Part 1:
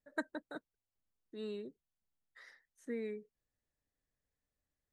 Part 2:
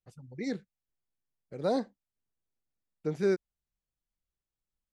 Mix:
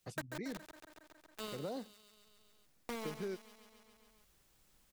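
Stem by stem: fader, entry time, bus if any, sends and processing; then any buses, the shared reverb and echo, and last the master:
-5.0 dB, 0.00 s, no send, echo send -8.5 dB, treble shelf 4.9 kHz +9 dB; word length cut 6-bit, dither none
+2.0 dB, 0.00 s, no send, no echo send, compression 2.5:1, threshold -38 dBFS, peak gain reduction 10.5 dB; auto duck -6 dB, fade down 0.45 s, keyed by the first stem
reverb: none
echo: feedback delay 138 ms, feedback 54%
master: three bands compressed up and down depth 70%

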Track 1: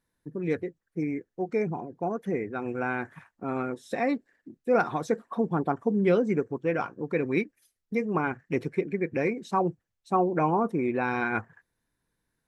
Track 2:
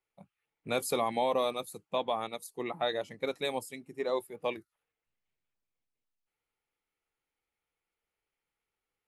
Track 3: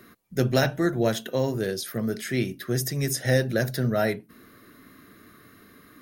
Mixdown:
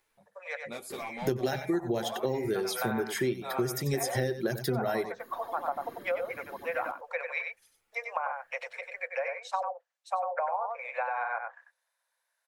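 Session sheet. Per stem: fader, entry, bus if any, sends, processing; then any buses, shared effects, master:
+2.0 dB, 0.00 s, no send, echo send -6 dB, steep high-pass 530 Hz 96 dB/octave; low-pass that closes with the level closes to 1 kHz, closed at -25.5 dBFS
-5.5 dB, 0.00 s, no send, echo send -20 dB, wavefolder -22 dBFS; upward compressor, threshold -53 dBFS; three-phase chorus
+2.0 dB, 0.90 s, no send, echo send -14 dB, reverb removal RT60 1 s; small resonant body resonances 380/810/3200 Hz, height 11 dB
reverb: none
echo: delay 94 ms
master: compression 6:1, threshold -27 dBFS, peak gain reduction 15.5 dB

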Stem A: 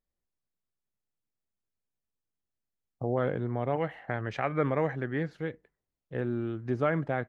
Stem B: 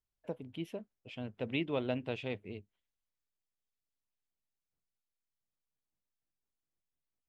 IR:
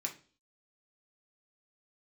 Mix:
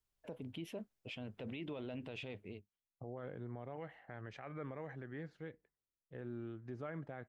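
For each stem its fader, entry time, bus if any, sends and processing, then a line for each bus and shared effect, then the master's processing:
-12.5 dB, 0.00 s, no send, none
+3.0 dB, 0.00 s, no send, auto duck -24 dB, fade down 0.70 s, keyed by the first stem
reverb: none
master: peak limiter -36 dBFS, peak gain reduction 17 dB

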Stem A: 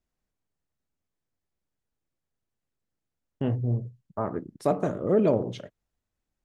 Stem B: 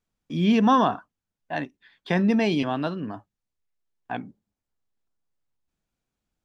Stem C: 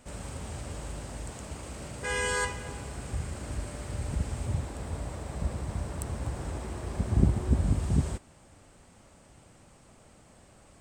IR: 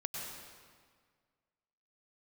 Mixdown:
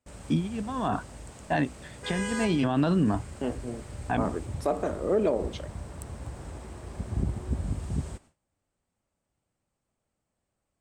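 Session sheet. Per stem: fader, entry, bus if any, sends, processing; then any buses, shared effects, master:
+1.0 dB, 0.00 s, no send, Bessel high-pass 300 Hz, order 4
+1.0 dB, 0.00 s, no send, bass shelf 220 Hz +8.5 dB; compressor with a negative ratio -23 dBFS, ratio -0.5
-5.0 dB, 0.00 s, no send, none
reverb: none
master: gate with hold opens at -46 dBFS; peak limiter -16 dBFS, peak gain reduction 10 dB

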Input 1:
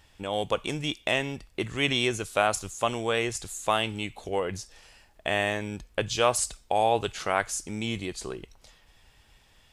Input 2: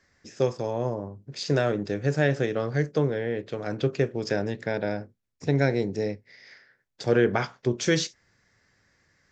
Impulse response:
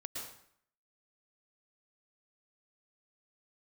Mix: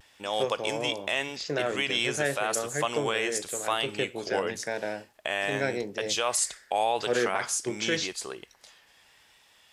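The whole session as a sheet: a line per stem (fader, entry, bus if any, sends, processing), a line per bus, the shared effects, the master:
+3.0 dB, 0.00 s, no send, none
+0.5 dB, 0.00 s, no send, treble shelf 5 kHz -6.5 dB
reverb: none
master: high-pass 690 Hz 6 dB/octave; vibrato 0.88 Hz 45 cents; peak limiter -15 dBFS, peak gain reduction 8.5 dB

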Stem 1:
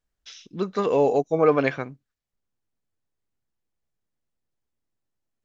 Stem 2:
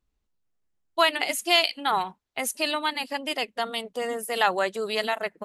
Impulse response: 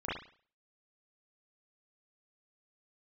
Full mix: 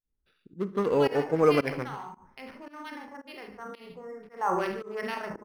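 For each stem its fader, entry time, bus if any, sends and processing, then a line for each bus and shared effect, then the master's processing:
-2.0 dB, 0.00 s, send -18.5 dB, echo send -15 dB, local Wiener filter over 41 samples
4.19 s -17.5 dB -> 4.53 s -10 dB, 0.00 s, send -5.5 dB, echo send -11.5 dB, local Wiener filter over 15 samples; LFO low-pass sine 2.2 Hz 990–3000 Hz; decay stretcher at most 51 dB/s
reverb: on, pre-delay 34 ms
echo: delay 144 ms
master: peaking EQ 670 Hz -9 dB 0.34 oct; volume shaper 112 bpm, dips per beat 1, -22 dB, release 148 ms; decimation joined by straight lines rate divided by 6×

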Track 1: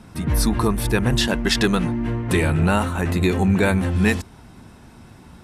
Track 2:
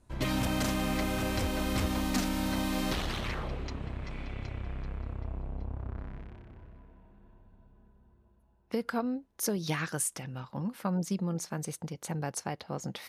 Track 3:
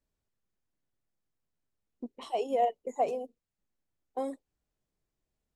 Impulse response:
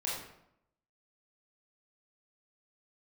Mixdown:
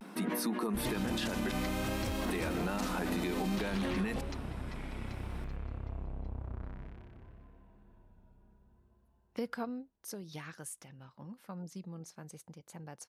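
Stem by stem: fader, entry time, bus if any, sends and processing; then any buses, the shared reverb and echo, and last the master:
-1.0 dB, 0.00 s, muted 1.51–2.25 s, bus A, no send, peaking EQ 6.6 kHz -5.5 dB 1 oct
9.36 s -3 dB -> 10.15 s -13 dB, 0.65 s, no bus, no send, none
-10.5 dB, 0.00 s, bus A, no send, three bands compressed up and down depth 100%
bus A: 0.0 dB, elliptic high-pass 190 Hz; compression, threshold -26 dBFS, peak gain reduction 11 dB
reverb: none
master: vibrato 0.57 Hz 54 cents; peak limiter -25.5 dBFS, peak gain reduction 10.5 dB

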